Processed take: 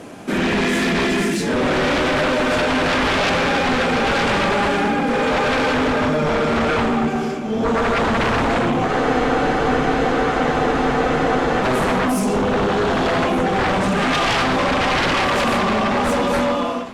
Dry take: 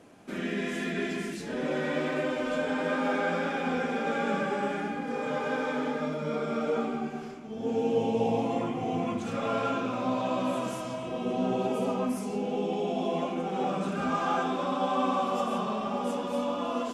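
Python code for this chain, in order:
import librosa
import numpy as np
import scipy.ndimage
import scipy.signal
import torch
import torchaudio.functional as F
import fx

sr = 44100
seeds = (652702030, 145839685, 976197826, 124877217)

p1 = fx.fade_out_tail(x, sr, length_s=0.6)
p2 = fx.fold_sine(p1, sr, drive_db=14, ceiling_db=-15.0)
p3 = p2 + fx.echo_feedback(p2, sr, ms=1188, feedback_pct=52, wet_db=-19.0, dry=0)
y = fx.spec_freeze(p3, sr, seeds[0], at_s=8.89, hold_s=2.73)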